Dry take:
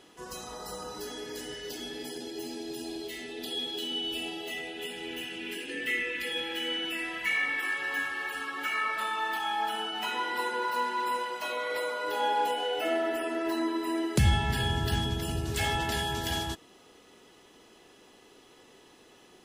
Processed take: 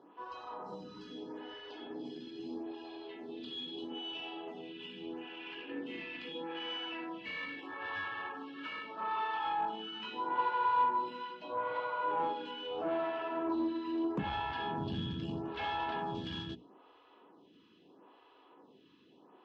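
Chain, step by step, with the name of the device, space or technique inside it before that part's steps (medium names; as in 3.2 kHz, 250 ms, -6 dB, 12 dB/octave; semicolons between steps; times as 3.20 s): hum notches 60/120/180/240/300/360/420 Hz; 11.33–12.18 s: treble shelf 5.2 kHz -10.5 dB; vibe pedal into a guitar amplifier (lamp-driven phase shifter 0.78 Hz; valve stage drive 29 dB, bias 0.45; cabinet simulation 110–3500 Hz, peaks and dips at 180 Hz +6 dB, 290 Hz +7 dB, 1 kHz +9 dB, 2 kHz -9 dB); trim -1.5 dB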